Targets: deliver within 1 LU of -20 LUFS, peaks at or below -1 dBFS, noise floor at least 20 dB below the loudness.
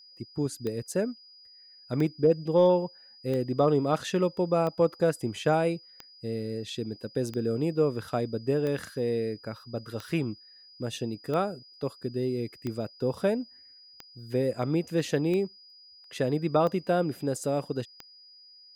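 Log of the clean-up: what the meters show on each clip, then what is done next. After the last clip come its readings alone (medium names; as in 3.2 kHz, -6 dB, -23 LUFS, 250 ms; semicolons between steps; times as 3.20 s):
clicks found 14; steady tone 4.9 kHz; tone level -51 dBFS; loudness -29.0 LUFS; peak level -13.0 dBFS; loudness target -20.0 LUFS
-> de-click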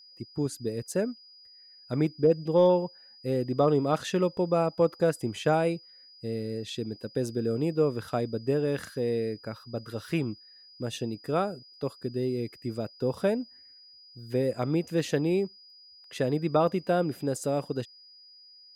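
clicks found 0; steady tone 4.9 kHz; tone level -51 dBFS
-> band-stop 4.9 kHz, Q 30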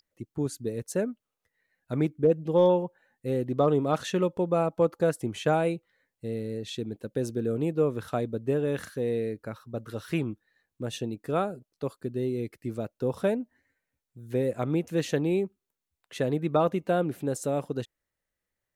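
steady tone not found; loudness -29.0 LUFS; peak level -13.0 dBFS; loudness target -20.0 LUFS
-> trim +9 dB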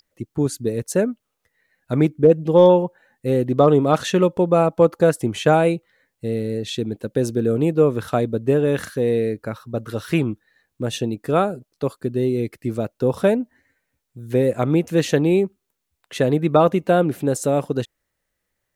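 loudness -20.0 LUFS; peak level -4.0 dBFS; noise floor -78 dBFS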